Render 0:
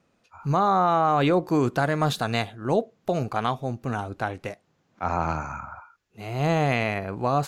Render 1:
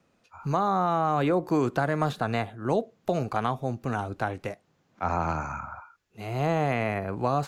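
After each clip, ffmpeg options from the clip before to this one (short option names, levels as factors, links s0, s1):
-filter_complex "[0:a]acrossover=split=280|2200|6900[s0][s1][s2][s3];[s0]acompressor=threshold=0.0355:ratio=4[s4];[s1]acompressor=threshold=0.0794:ratio=4[s5];[s2]acompressor=threshold=0.00447:ratio=4[s6];[s3]acompressor=threshold=0.00141:ratio=4[s7];[s4][s5][s6][s7]amix=inputs=4:normalize=0"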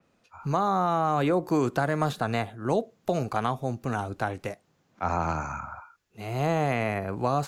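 -af "adynamicequalizer=threshold=0.00398:dfrequency=4800:dqfactor=0.7:tfrequency=4800:tqfactor=0.7:attack=5:release=100:ratio=0.375:range=2.5:mode=boostabove:tftype=highshelf"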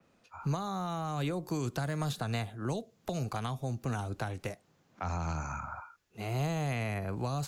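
-filter_complex "[0:a]acrossover=split=160|3000[s0][s1][s2];[s1]acompressor=threshold=0.0158:ratio=5[s3];[s0][s3][s2]amix=inputs=3:normalize=0"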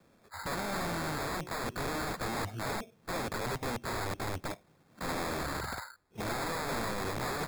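-af "acrusher=samples=15:mix=1:aa=0.000001,aeval=exprs='(mod(47.3*val(0)+1,2)-1)/47.3':c=same,volume=1.5"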